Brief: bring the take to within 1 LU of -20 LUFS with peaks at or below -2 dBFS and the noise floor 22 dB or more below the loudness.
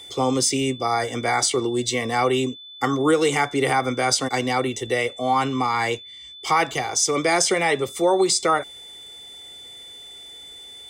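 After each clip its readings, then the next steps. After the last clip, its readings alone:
steady tone 3500 Hz; tone level -39 dBFS; loudness -21.5 LUFS; peak -4.5 dBFS; loudness target -20.0 LUFS
-> notch 3500 Hz, Q 30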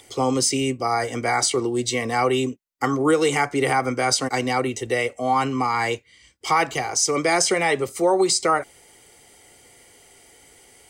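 steady tone none; loudness -21.5 LUFS; peak -4.5 dBFS; loudness target -20.0 LUFS
-> gain +1.5 dB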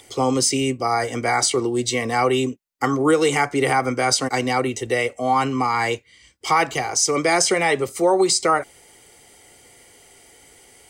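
loudness -20.0 LUFS; peak -3.0 dBFS; noise floor -52 dBFS

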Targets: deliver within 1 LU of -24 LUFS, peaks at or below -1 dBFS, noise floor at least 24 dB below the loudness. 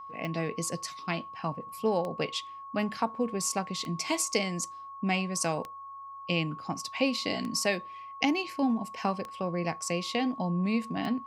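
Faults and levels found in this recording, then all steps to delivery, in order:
clicks 7; steady tone 1100 Hz; tone level -41 dBFS; loudness -31.0 LUFS; peak -10.5 dBFS; loudness target -24.0 LUFS
-> de-click; notch 1100 Hz, Q 30; gain +7 dB

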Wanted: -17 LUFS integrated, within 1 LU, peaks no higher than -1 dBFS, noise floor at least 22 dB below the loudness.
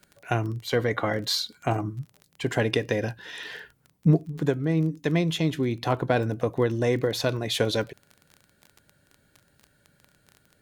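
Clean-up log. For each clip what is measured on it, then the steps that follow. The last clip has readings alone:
ticks 21/s; loudness -26.5 LUFS; peak -7.5 dBFS; loudness target -17.0 LUFS
-> de-click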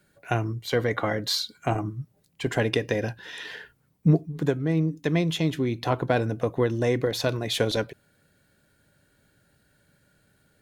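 ticks 0/s; loudness -26.5 LUFS; peak -7.5 dBFS; loudness target -17.0 LUFS
-> gain +9.5 dB; limiter -1 dBFS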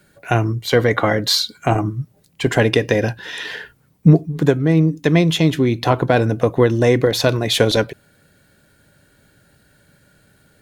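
loudness -17.5 LUFS; peak -1.0 dBFS; noise floor -57 dBFS

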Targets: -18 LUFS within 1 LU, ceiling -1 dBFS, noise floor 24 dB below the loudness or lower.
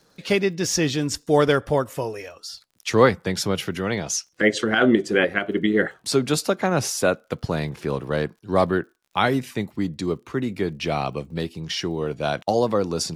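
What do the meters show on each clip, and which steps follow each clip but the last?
ticks 51/s; loudness -23.0 LUFS; peak -3.0 dBFS; loudness target -18.0 LUFS
-> de-click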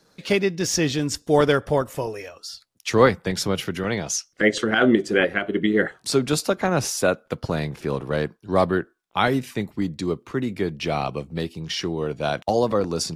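ticks 0.076/s; loudness -23.0 LUFS; peak -3.0 dBFS; loudness target -18.0 LUFS
-> gain +5 dB; limiter -1 dBFS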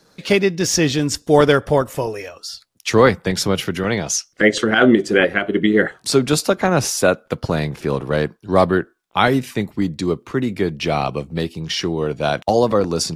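loudness -18.5 LUFS; peak -1.0 dBFS; noise floor -59 dBFS

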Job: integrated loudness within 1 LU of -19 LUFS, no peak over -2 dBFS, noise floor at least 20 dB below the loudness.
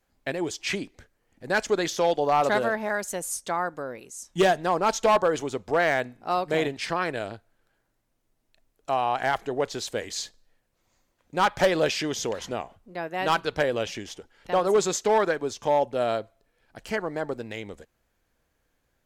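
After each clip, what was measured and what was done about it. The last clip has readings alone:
clipped 0.5%; flat tops at -14.5 dBFS; loudness -26.0 LUFS; peak -14.5 dBFS; loudness target -19.0 LUFS
-> clip repair -14.5 dBFS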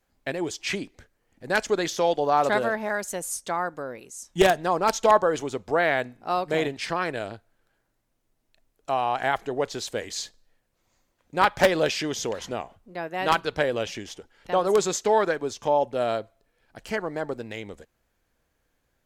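clipped 0.0%; loudness -25.5 LUFS; peak -5.5 dBFS; loudness target -19.0 LUFS
-> gain +6.5 dB; limiter -2 dBFS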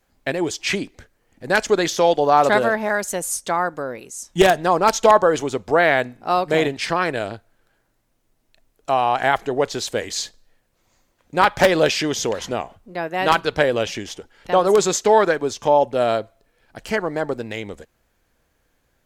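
loudness -19.5 LUFS; peak -2.0 dBFS; noise floor -67 dBFS

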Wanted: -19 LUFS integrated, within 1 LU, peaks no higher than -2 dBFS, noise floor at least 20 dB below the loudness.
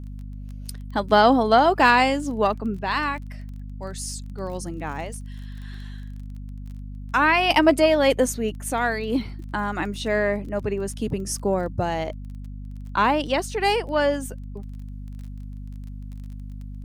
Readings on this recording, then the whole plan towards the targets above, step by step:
ticks 22/s; hum 50 Hz; harmonics up to 250 Hz; hum level -33 dBFS; loudness -22.5 LUFS; peak -3.5 dBFS; loudness target -19.0 LUFS
-> de-click; notches 50/100/150/200/250 Hz; gain +3.5 dB; limiter -2 dBFS

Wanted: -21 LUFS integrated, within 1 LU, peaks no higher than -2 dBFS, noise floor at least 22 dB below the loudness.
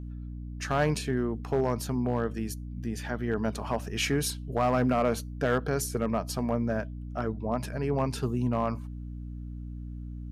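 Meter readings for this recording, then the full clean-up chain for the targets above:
clipped 0.4%; flat tops at -18.0 dBFS; hum 60 Hz; harmonics up to 300 Hz; hum level -36 dBFS; loudness -30.0 LUFS; peak -18.0 dBFS; loudness target -21.0 LUFS
-> clip repair -18 dBFS; notches 60/120/180/240/300 Hz; gain +9 dB

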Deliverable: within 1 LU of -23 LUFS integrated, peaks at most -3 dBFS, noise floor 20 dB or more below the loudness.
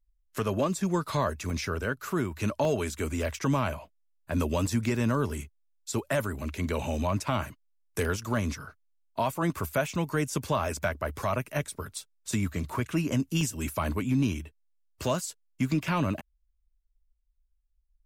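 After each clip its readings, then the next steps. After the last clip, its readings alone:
dropouts 7; longest dropout 1.5 ms; loudness -30.5 LUFS; peak -16.0 dBFS; loudness target -23.0 LUFS
-> interpolate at 1.5/2.65/3.22/4.67/8.05/13.41/15.88, 1.5 ms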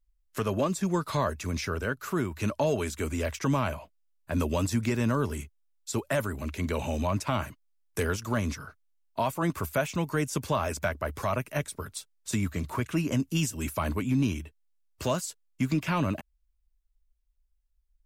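dropouts 0; loudness -30.5 LUFS; peak -16.0 dBFS; loudness target -23.0 LUFS
-> gain +7.5 dB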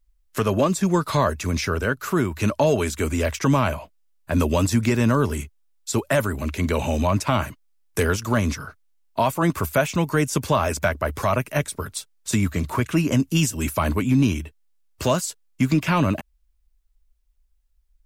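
loudness -23.0 LUFS; peak -8.5 dBFS; noise floor -64 dBFS

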